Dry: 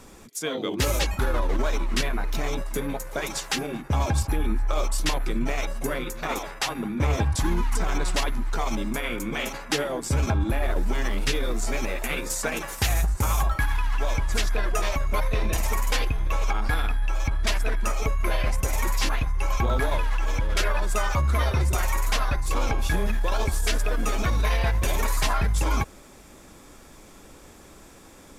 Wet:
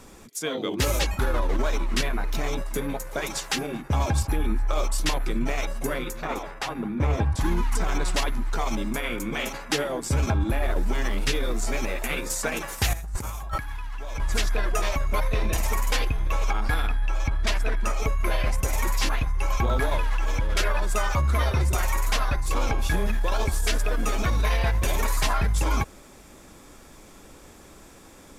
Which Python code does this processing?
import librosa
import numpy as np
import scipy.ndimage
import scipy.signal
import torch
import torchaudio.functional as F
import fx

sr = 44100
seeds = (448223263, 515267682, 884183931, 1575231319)

y = fx.high_shelf(x, sr, hz=2700.0, db=-9.5, at=(6.22, 7.41))
y = fx.over_compress(y, sr, threshold_db=-28.0, ratio=-0.5, at=(12.93, 14.2))
y = fx.high_shelf(y, sr, hz=8800.0, db=-7.0, at=(16.87, 18.0))